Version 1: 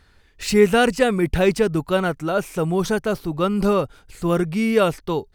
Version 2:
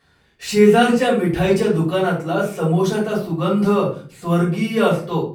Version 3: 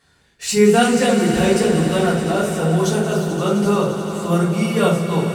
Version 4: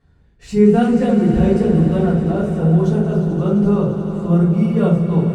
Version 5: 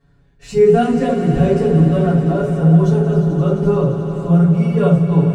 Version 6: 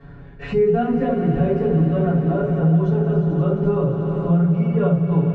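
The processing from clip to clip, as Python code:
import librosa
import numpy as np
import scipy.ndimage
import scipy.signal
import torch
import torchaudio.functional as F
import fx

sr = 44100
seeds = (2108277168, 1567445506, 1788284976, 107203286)

y1 = scipy.signal.sosfilt(scipy.signal.butter(2, 130.0, 'highpass', fs=sr, output='sos'), x)
y1 = fx.room_shoebox(y1, sr, seeds[0], volume_m3=290.0, walls='furnished', distance_m=5.7)
y1 = F.gain(torch.from_numpy(y1), -8.5).numpy()
y2 = fx.peak_eq(y1, sr, hz=7900.0, db=9.5, octaves=1.2)
y2 = fx.echo_swell(y2, sr, ms=87, loudest=5, wet_db=-13.5)
y2 = F.gain(torch.from_numpy(y2), -1.0).numpy()
y3 = fx.tilt_eq(y2, sr, slope=-4.5)
y3 = F.gain(torch.from_numpy(y3), -6.5).numpy()
y4 = y3 + 0.93 * np.pad(y3, (int(7.1 * sr / 1000.0), 0))[:len(y3)]
y4 = F.gain(torch.from_numpy(y4), -1.0).numpy()
y5 = scipy.signal.sosfilt(scipy.signal.butter(2, 2400.0, 'lowpass', fs=sr, output='sos'), y4)
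y5 = fx.band_squash(y5, sr, depth_pct=70)
y5 = F.gain(torch.from_numpy(y5), -5.0).numpy()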